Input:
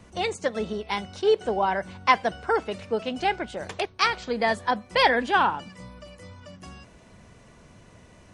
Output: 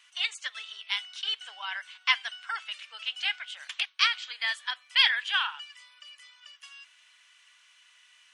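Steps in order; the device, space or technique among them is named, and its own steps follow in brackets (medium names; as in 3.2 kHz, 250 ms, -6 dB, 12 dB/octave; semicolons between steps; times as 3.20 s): headphones lying on a table (high-pass 1.4 kHz 24 dB/octave; peaking EQ 3.1 kHz +10.5 dB 0.56 oct); trim -2.5 dB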